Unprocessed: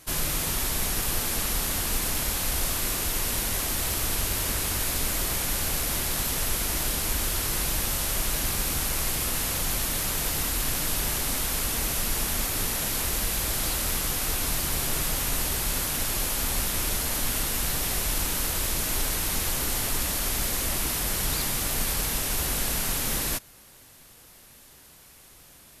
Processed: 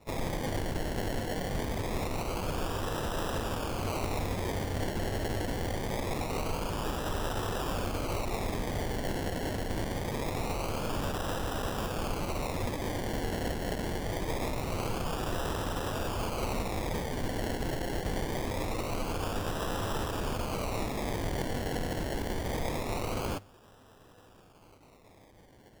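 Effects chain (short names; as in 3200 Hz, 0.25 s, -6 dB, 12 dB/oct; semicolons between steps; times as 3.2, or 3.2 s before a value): thirty-one-band EQ 100 Hz +11 dB, 500 Hz +10 dB, 4000 Hz +10 dB; decimation with a swept rate 28×, swing 60% 0.24 Hz; gain -7 dB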